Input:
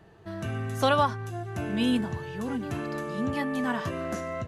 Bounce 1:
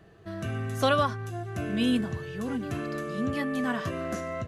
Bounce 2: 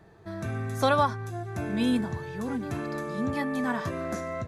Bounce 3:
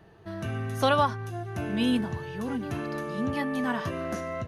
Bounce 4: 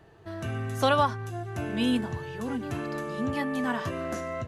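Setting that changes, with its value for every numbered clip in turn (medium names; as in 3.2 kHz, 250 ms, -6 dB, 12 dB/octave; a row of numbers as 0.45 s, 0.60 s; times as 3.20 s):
band-stop, frequency: 890 Hz, 2.9 kHz, 7.5 kHz, 190 Hz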